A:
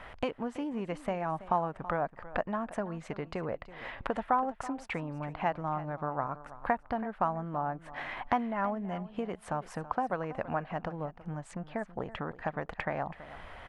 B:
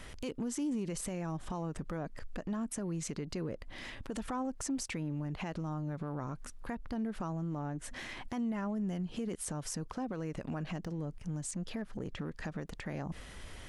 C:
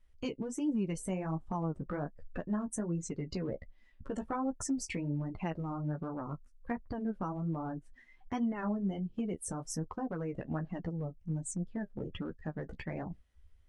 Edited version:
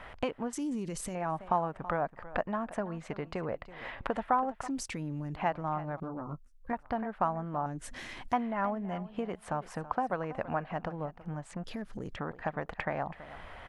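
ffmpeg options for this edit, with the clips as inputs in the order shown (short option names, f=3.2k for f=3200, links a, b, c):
-filter_complex "[1:a]asplit=4[a][b][c][d];[0:a]asplit=6[e][f][g][h][i][j];[e]atrim=end=0.532[k];[a]atrim=start=0.528:end=1.152[l];[f]atrim=start=1.148:end=4.682[m];[b]atrim=start=4.678:end=5.362[n];[g]atrim=start=5.358:end=6.002[o];[2:a]atrim=start=5.998:end=6.732[p];[h]atrim=start=6.728:end=7.662[q];[c]atrim=start=7.658:end=8.332[r];[i]atrim=start=8.328:end=11.642[s];[d]atrim=start=11.638:end=12.162[t];[j]atrim=start=12.158[u];[k][l]acrossfade=d=0.004:c1=hsin:c2=hsin[v];[v][m]acrossfade=d=0.004:c1=hsin:c2=hsin[w];[w][n]acrossfade=d=0.004:c1=hsin:c2=hsin[x];[x][o]acrossfade=d=0.004:c1=hsin:c2=hsin[y];[y][p]acrossfade=d=0.004:c1=hsin:c2=hsin[z];[z][q]acrossfade=d=0.004:c1=hsin:c2=hsin[aa];[aa][r]acrossfade=d=0.004:c1=hsin:c2=hsin[ab];[ab][s]acrossfade=d=0.004:c1=hsin:c2=hsin[ac];[ac][t]acrossfade=d=0.004:c1=hsin:c2=hsin[ad];[ad][u]acrossfade=d=0.004:c1=hsin:c2=hsin"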